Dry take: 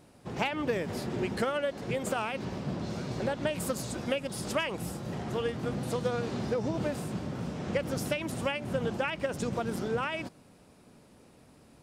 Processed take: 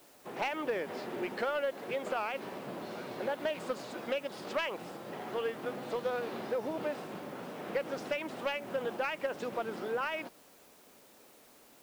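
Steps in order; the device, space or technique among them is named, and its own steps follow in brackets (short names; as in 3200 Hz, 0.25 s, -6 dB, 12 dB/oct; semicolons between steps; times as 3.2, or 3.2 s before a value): tape answering machine (BPF 380–3300 Hz; soft clip -23 dBFS, distortion -18 dB; wow and flutter; white noise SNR 25 dB)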